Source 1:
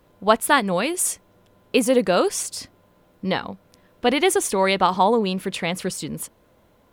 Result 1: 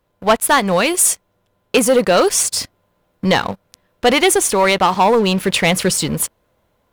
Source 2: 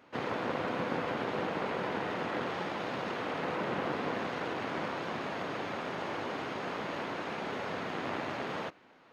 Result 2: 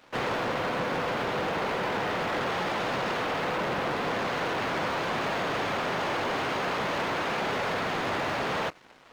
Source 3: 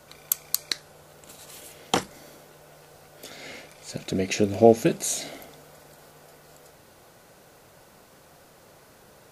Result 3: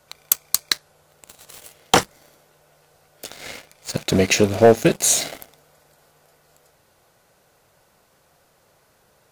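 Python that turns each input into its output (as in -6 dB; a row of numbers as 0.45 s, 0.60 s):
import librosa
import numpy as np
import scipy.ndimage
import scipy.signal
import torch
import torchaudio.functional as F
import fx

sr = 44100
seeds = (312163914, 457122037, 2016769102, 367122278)

y = fx.peak_eq(x, sr, hz=270.0, db=-5.0, octaves=1.3)
y = fx.rider(y, sr, range_db=3, speed_s=0.5)
y = fx.leveller(y, sr, passes=3)
y = F.gain(torch.from_numpy(y), -1.0).numpy()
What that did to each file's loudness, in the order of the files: +6.0 LU, +6.5 LU, +6.0 LU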